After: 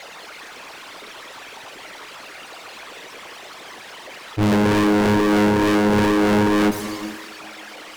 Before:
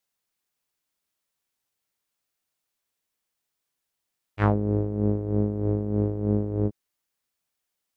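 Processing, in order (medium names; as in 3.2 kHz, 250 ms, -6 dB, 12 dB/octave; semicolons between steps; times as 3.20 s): resonances exaggerated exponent 3; high-pass 320 Hz 12 dB/octave; level-controlled noise filter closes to 2.6 kHz, open at -31.5 dBFS; power-law waveshaper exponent 0.5; in parallel at -9.5 dB: sine folder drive 12 dB, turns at -18.5 dBFS; on the sum: tape echo 155 ms, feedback 78%, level -16 dB; gated-style reverb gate 480 ms flat, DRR 9 dB; trim +7.5 dB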